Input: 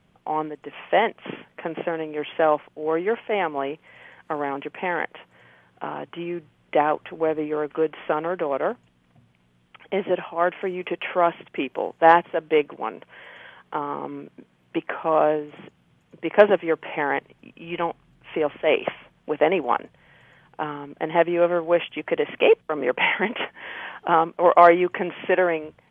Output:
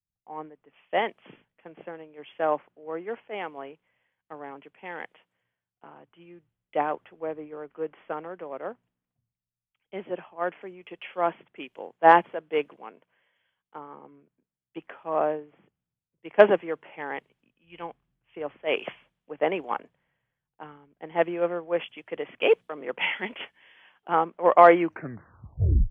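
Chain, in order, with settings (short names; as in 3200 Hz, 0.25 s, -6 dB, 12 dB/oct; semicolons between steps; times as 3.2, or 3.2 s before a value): tape stop at the end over 1.14 s; three-band expander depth 100%; gain -10 dB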